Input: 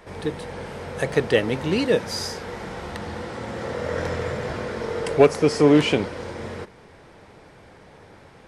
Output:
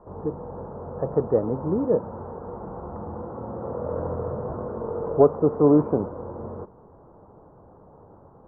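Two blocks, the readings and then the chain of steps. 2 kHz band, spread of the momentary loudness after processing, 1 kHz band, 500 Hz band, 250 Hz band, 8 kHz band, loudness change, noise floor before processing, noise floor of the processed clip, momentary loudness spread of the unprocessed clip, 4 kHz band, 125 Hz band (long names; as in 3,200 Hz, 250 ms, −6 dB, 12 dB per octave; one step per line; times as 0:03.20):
below −20 dB, 18 LU, −2.0 dB, −1.5 dB, −1.5 dB, below −40 dB, −2.0 dB, −49 dBFS, −51 dBFS, 17 LU, below −40 dB, −1.5 dB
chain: Butterworth low-pass 1,200 Hz 48 dB per octave
level −1.5 dB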